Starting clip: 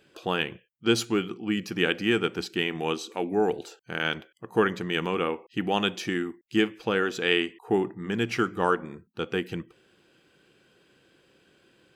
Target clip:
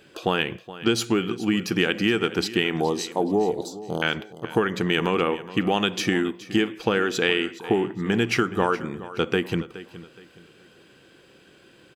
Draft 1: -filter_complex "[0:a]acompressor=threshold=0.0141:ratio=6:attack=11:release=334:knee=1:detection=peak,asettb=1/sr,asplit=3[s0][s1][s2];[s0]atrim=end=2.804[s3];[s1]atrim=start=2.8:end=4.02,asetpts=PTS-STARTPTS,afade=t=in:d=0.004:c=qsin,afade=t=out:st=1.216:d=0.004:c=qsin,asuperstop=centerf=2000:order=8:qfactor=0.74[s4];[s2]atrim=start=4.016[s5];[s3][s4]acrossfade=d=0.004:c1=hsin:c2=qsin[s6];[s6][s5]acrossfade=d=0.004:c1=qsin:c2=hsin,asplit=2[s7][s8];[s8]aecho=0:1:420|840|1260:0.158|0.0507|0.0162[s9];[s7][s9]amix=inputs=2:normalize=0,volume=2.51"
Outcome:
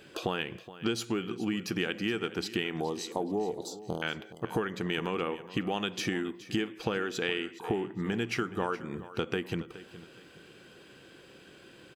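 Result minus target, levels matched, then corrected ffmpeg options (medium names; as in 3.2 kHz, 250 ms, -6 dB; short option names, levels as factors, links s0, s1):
compression: peak gain reduction +9.5 dB
-filter_complex "[0:a]acompressor=threshold=0.0531:ratio=6:attack=11:release=334:knee=1:detection=peak,asettb=1/sr,asplit=3[s0][s1][s2];[s0]atrim=end=2.804[s3];[s1]atrim=start=2.8:end=4.02,asetpts=PTS-STARTPTS,afade=t=in:d=0.004:c=qsin,afade=t=out:st=1.216:d=0.004:c=qsin,asuperstop=centerf=2000:order=8:qfactor=0.74[s4];[s2]atrim=start=4.016[s5];[s3][s4]acrossfade=d=0.004:c1=hsin:c2=qsin[s6];[s6][s5]acrossfade=d=0.004:c1=qsin:c2=hsin,asplit=2[s7][s8];[s8]aecho=0:1:420|840|1260:0.158|0.0507|0.0162[s9];[s7][s9]amix=inputs=2:normalize=0,volume=2.51"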